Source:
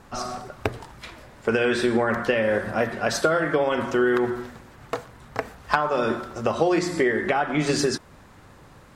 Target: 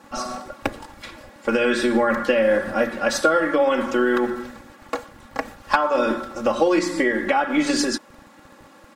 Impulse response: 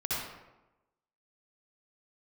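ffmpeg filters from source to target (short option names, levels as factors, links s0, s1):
-filter_complex "[0:a]aecho=1:1:3.6:0.91,acrossover=split=160[s0][s1];[s0]acrusher=bits=5:dc=4:mix=0:aa=0.000001[s2];[s2][s1]amix=inputs=2:normalize=0"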